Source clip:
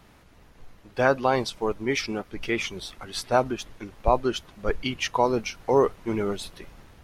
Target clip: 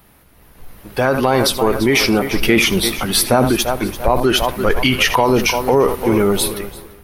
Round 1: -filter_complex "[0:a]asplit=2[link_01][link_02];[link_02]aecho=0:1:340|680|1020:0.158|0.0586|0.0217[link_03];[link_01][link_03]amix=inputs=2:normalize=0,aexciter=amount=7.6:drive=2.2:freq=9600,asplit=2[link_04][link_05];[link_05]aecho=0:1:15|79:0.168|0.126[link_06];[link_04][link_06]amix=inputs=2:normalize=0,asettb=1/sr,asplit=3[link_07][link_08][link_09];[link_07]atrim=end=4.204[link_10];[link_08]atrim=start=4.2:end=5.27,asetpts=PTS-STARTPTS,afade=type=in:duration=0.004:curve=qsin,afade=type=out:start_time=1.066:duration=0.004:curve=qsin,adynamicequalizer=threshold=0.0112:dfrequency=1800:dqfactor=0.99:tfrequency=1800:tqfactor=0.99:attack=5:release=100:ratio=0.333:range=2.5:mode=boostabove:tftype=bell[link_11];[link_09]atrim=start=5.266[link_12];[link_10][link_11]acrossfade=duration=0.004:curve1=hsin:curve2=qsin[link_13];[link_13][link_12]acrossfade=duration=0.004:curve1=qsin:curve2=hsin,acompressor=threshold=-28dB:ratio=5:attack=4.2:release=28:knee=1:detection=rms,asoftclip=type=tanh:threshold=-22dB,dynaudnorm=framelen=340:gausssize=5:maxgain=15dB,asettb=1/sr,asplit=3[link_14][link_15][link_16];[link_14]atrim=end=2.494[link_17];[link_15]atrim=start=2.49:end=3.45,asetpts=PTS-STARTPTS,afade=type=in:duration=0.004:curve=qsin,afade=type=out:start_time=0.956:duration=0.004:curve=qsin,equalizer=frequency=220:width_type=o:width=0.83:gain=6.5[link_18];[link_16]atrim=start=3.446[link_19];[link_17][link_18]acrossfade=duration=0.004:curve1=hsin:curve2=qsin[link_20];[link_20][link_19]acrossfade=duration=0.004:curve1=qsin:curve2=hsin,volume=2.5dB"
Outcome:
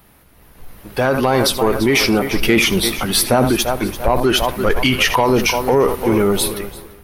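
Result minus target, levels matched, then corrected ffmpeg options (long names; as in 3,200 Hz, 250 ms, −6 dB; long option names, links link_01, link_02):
soft clipping: distortion +11 dB
-filter_complex "[0:a]asplit=2[link_01][link_02];[link_02]aecho=0:1:340|680|1020:0.158|0.0586|0.0217[link_03];[link_01][link_03]amix=inputs=2:normalize=0,aexciter=amount=7.6:drive=2.2:freq=9600,asplit=2[link_04][link_05];[link_05]aecho=0:1:15|79:0.168|0.126[link_06];[link_04][link_06]amix=inputs=2:normalize=0,asettb=1/sr,asplit=3[link_07][link_08][link_09];[link_07]atrim=end=4.204[link_10];[link_08]atrim=start=4.2:end=5.27,asetpts=PTS-STARTPTS,afade=type=in:duration=0.004:curve=qsin,afade=type=out:start_time=1.066:duration=0.004:curve=qsin,adynamicequalizer=threshold=0.0112:dfrequency=1800:dqfactor=0.99:tfrequency=1800:tqfactor=0.99:attack=5:release=100:ratio=0.333:range=2.5:mode=boostabove:tftype=bell[link_11];[link_09]atrim=start=5.266[link_12];[link_10][link_11]acrossfade=duration=0.004:curve1=hsin:curve2=qsin[link_13];[link_13][link_12]acrossfade=duration=0.004:curve1=qsin:curve2=hsin,acompressor=threshold=-28dB:ratio=5:attack=4.2:release=28:knee=1:detection=rms,asoftclip=type=tanh:threshold=-15.5dB,dynaudnorm=framelen=340:gausssize=5:maxgain=15dB,asettb=1/sr,asplit=3[link_14][link_15][link_16];[link_14]atrim=end=2.494[link_17];[link_15]atrim=start=2.49:end=3.45,asetpts=PTS-STARTPTS,afade=type=in:duration=0.004:curve=qsin,afade=type=out:start_time=0.956:duration=0.004:curve=qsin,equalizer=frequency=220:width_type=o:width=0.83:gain=6.5[link_18];[link_16]atrim=start=3.446[link_19];[link_17][link_18]acrossfade=duration=0.004:curve1=hsin:curve2=qsin[link_20];[link_20][link_19]acrossfade=duration=0.004:curve1=qsin:curve2=hsin,volume=2.5dB"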